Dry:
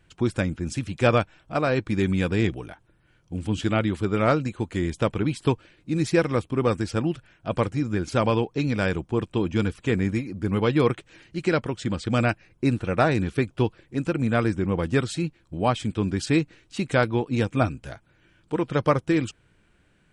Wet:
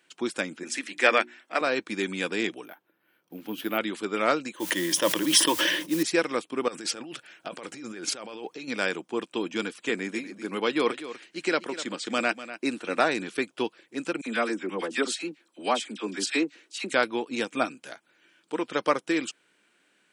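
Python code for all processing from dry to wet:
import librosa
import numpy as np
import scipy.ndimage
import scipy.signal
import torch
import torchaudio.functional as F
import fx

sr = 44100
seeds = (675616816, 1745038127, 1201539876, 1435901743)

y = fx.chain(x, sr, fx.highpass(hz=220.0, slope=24),
    fx.peak_eq(hz=1900.0, db=11.5, octaves=0.48),
    fx.hum_notches(base_hz=60, count=6), at=(0.63, 1.61))
y = fx.chain(y, sr, fx.block_float(bits=7),
    fx.lowpass(hz=1800.0, slope=6),
    fx.resample_bad(factor=3, down='filtered', up='hold'), at=(2.65, 3.78))
y = fx.chain(y, sr, fx.ripple_eq(per_octave=1.2, db=12),
    fx.mod_noise(seeds[0], snr_db=23),
    fx.sustainer(db_per_s=35.0), at=(4.54, 6.03))
y = fx.chain(y, sr, fx.peak_eq(hz=240.0, db=-3.5, octaves=0.34),
    fx.notch(hz=1000.0, q=17.0),
    fx.over_compress(threshold_db=-32.0, ratio=-1.0), at=(6.68, 8.68))
y = fx.chain(y, sr, fx.highpass(hz=140.0, slope=12),
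    fx.echo_single(ms=246, db=-13.5), at=(9.89, 13.0))
y = fx.chain(y, sr, fx.steep_highpass(hz=190.0, slope=36),
    fx.dispersion(late='lows', ms=50.0, hz=1500.0), at=(14.21, 16.93))
y = scipy.signal.sosfilt(scipy.signal.butter(4, 240.0, 'highpass', fs=sr, output='sos'), y)
y = fx.tilt_shelf(y, sr, db=-4.5, hz=1500.0)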